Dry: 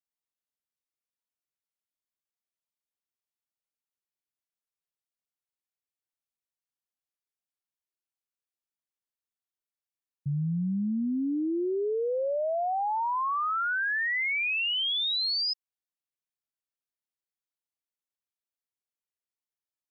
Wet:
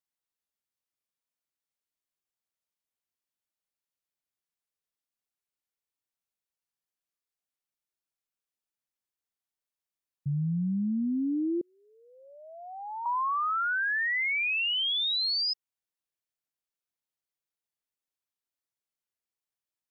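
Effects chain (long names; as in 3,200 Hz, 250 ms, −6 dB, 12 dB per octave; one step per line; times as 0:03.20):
0:11.61–0:13.06: high-pass filter 1,100 Hz 24 dB per octave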